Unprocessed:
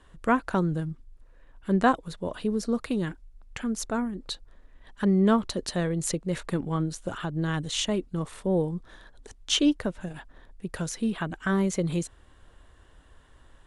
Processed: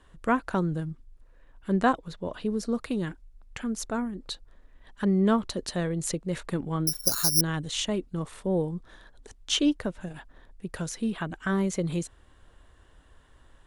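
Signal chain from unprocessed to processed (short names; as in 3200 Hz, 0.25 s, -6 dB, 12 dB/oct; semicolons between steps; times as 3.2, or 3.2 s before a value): 1.93–2.46 bell 9300 Hz -8.5 dB 0.61 oct; 6.87–7.41 careless resampling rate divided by 8×, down filtered, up zero stuff; gain -1.5 dB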